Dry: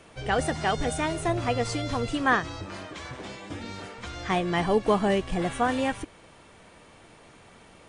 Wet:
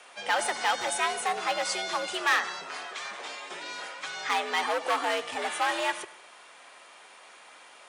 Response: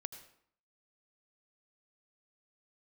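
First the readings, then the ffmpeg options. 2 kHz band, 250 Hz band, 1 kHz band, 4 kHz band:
+2.0 dB, -15.5 dB, 0.0 dB, +4.0 dB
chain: -filter_complex "[0:a]afreqshift=76,asplit=2[a][b];[1:a]atrim=start_sample=2205[c];[b][c]afir=irnorm=-1:irlink=0,volume=-1dB[d];[a][d]amix=inputs=2:normalize=0,asoftclip=type=hard:threshold=-17.5dB,highpass=820"

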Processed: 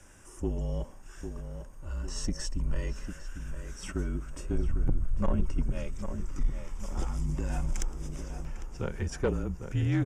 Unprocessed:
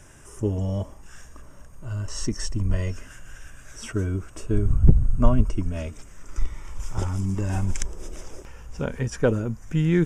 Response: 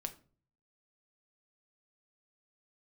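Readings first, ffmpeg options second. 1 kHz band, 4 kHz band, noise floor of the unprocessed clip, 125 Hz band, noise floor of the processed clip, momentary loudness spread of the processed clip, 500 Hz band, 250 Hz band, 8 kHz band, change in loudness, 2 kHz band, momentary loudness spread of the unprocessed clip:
-6.5 dB, -5.5 dB, -46 dBFS, -8.5 dB, -48 dBFS, 11 LU, -8.0 dB, -8.0 dB, -6.0 dB, -8.5 dB, -6.5 dB, 20 LU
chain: -filter_complex "[0:a]afreqshift=-40,asoftclip=type=tanh:threshold=-14.5dB,asplit=2[a][b];[b]adelay=801,lowpass=f=2k:p=1,volume=-8dB,asplit=2[c][d];[d]adelay=801,lowpass=f=2k:p=1,volume=0.51,asplit=2[e][f];[f]adelay=801,lowpass=f=2k:p=1,volume=0.51,asplit=2[g][h];[h]adelay=801,lowpass=f=2k:p=1,volume=0.51,asplit=2[i][j];[j]adelay=801,lowpass=f=2k:p=1,volume=0.51,asplit=2[k][l];[l]adelay=801,lowpass=f=2k:p=1,volume=0.51[m];[a][c][e][g][i][k][m]amix=inputs=7:normalize=0,volume=-5dB"

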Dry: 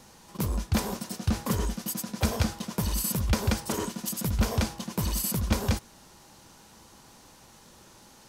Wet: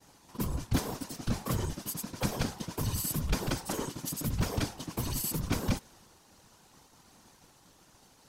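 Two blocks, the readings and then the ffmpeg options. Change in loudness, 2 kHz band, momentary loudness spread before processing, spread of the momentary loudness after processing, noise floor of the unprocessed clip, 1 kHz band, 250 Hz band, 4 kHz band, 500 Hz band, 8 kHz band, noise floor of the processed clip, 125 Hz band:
-4.5 dB, -4.0 dB, 5 LU, 5 LU, -54 dBFS, -4.0 dB, -4.5 dB, -4.0 dB, -4.0 dB, -4.0 dB, -62 dBFS, -4.5 dB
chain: -af "afftfilt=real='hypot(re,im)*cos(2*PI*random(0))':imag='hypot(re,im)*sin(2*PI*random(1))':win_size=512:overlap=0.75,agate=range=-33dB:threshold=-56dB:ratio=3:detection=peak,volume=2dB"

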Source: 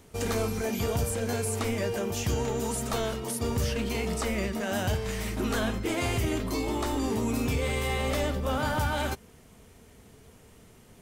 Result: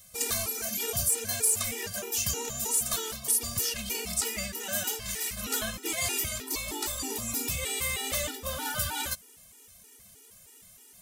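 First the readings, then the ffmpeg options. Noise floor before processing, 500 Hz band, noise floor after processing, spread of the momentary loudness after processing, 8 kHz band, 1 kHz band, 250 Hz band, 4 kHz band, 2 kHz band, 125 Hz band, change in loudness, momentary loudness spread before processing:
-54 dBFS, -9.5 dB, -55 dBFS, 6 LU, +9.5 dB, -6.5 dB, -11.5 dB, +3.5 dB, -1.5 dB, -11.0 dB, +0.5 dB, 2 LU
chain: -af "aeval=exprs='0.119*(cos(1*acos(clip(val(0)/0.119,-1,1)))-cos(1*PI/2))+0.0075*(cos(3*acos(clip(val(0)/0.119,-1,1)))-cos(3*PI/2))':c=same,crystalizer=i=10:c=0,afftfilt=real='re*gt(sin(2*PI*3.2*pts/sr)*(1-2*mod(floor(b*sr/1024/250),2)),0)':imag='im*gt(sin(2*PI*3.2*pts/sr)*(1-2*mod(floor(b*sr/1024/250),2)),0)':win_size=1024:overlap=0.75,volume=-7dB"

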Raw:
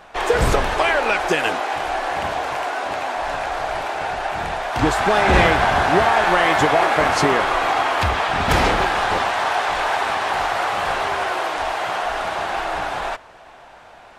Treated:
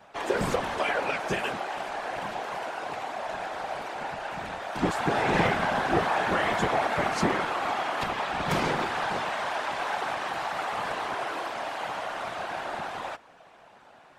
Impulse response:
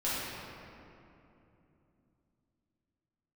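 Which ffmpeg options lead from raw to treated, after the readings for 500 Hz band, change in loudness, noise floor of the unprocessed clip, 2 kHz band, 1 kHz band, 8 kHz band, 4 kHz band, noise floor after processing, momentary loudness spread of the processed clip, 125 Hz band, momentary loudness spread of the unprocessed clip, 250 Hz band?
-9.5 dB, -9.5 dB, -44 dBFS, -10.0 dB, -10.0 dB, -10.0 dB, -10.0 dB, -54 dBFS, 9 LU, -9.5 dB, 9 LU, -6.5 dB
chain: -af "lowshelf=f=120:t=q:w=3:g=-10.5,afftfilt=real='hypot(re,im)*cos(2*PI*random(0))':imag='hypot(re,im)*sin(2*PI*random(1))':win_size=512:overlap=0.75,volume=-4dB"

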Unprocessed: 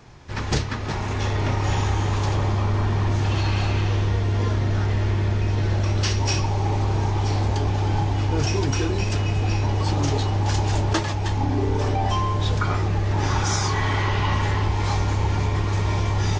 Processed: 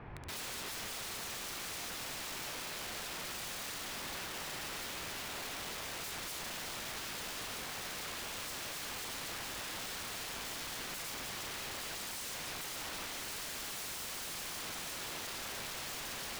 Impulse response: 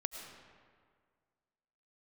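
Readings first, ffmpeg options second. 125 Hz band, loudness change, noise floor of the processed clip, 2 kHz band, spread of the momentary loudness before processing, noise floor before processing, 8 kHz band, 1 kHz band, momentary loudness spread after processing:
-36.0 dB, -17.0 dB, -43 dBFS, -11.0 dB, 1 LU, -26 dBFS, n/a, -18.5 dB, 1 LU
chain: -af "lowpass=f=2.5k:w=0.5412,lowpass=f=2.5k:w=1.3066,bandreject=f=60:t=h:w=6,bandreject=f=120:t=h:w=6,bandreject=f=180:t=h:w=6,bandreject=f=240:t=h:w=6,bandreject=f=300:t=h:w=6,bandreject=f=360:t=h:w=6,bandreject=f=420:t=h:w=6,alimiter=limit=-21dB:level=0:latency=1:release=39,aeval=exprs='(mod(75*val(0)+1,2)-1)/75':c=same"

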